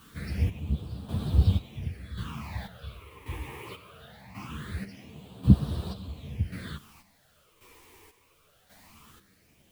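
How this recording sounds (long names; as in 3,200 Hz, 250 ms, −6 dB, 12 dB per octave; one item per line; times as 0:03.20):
phaser sweep stages 8, 0.22 Hz, lowest notch 190–2,100 Hz
a quantiser's noise floor 10 bits, dither triangular
chopped level 0.92 Hz, depth 65%, duty 45%
a shimmering, thickened sound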